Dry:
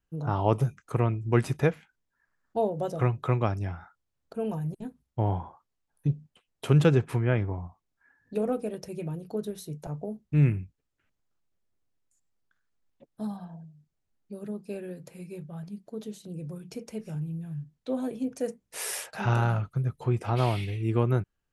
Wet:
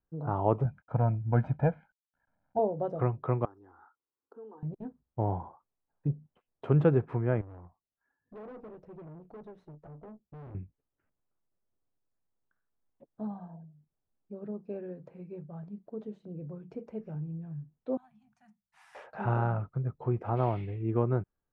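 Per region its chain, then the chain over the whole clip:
0.65–2.59 s: CVSD coder 64 kbps + low-pass 1.8 kHz 6 dB/octave + comb 1.3 ms, depth 84%
3.45–4.63 s: static phaser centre 630 Hz, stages 6 + compression 2.5:1, threshold -47 dBFS + high-pass 230 Hz
7.41–10.55 s: valve stage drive 41 dB, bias 0.55 + upward expansion, over -54 dBFS
17.97–18.95 s: Chebyshev band-stop 210–750 Hz, order 4 + pre-emphasis filter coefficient 0.8
whole clip: low-pass 1.1 kHz 12 dB/octave; bass shelf 250 Hz -5.5 dB

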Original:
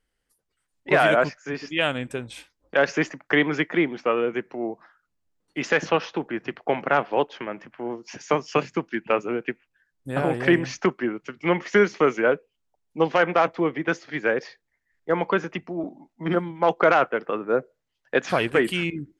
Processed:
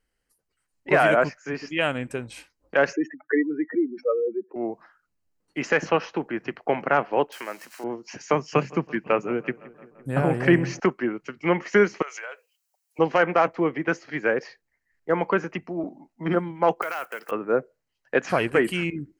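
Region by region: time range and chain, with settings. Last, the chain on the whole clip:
2.93–4.56 s: spectral contrast enhancement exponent 3.4 + high-pass 250 Hz
7.32–7.84 s: zero-crossing glitches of -34 dBFS + frequency weighting A
8.36–10.80 s: peaking EQ 150 Hz +6 dB 0.76 oct + filtered feedback delay 170 ms, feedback 72%, low-pass 2.8 kHz, level -20.5 dB
12.02–12.99 s: high-pass 540 Hz 24 dB/octave + tilt EQ +4.5 dB/octave + compression, threshold -33 dBFS
16.82–17.32 s: block-companded coder 7-bit + tilt EQ +4.5 dB/octave + compression 2.5:1, threshold -32 dBFS
whole clip: band-stop 3.5 kHz, Q 6.3; dynamic bell 4.1 kHz, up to -4 dB, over -42 dBFS, Q 1.3

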